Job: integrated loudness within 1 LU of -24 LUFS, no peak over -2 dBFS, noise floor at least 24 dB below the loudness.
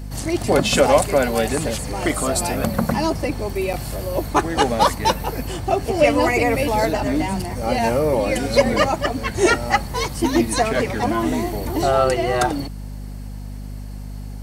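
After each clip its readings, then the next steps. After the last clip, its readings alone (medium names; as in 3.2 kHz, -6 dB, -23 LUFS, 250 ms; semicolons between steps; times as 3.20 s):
dropouts 1; longest dropout 7.6 ms; hum 50 Hz; highest harmonic 250 Hz; hum level -29 dBFS; loudness -20.0 LUFS; peak level -2.0 dBFS; loudness target -24.0 LUFS
-> interpolate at 3.73 s, 7.6 ms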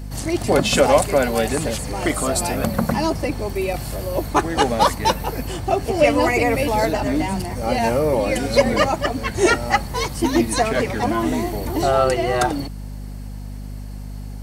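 dropouts 0; hum 50 Hz; highest harmonic 250 Hz; hum level -29 dBFS
-> de-hum 50 Hz, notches 5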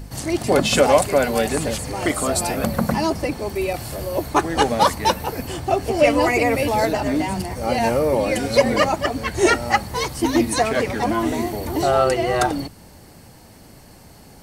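hum not found; loudness -20.0 LUFS; peak level -2.0 dBFS; loudness target -24.0 LUFS
-> trim -4 dB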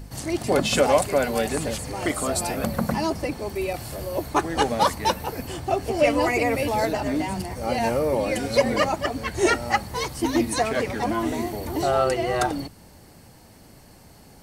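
loudness -24.0 LUFS; peak level -6.0 dBFS; noise floor -49 dBFS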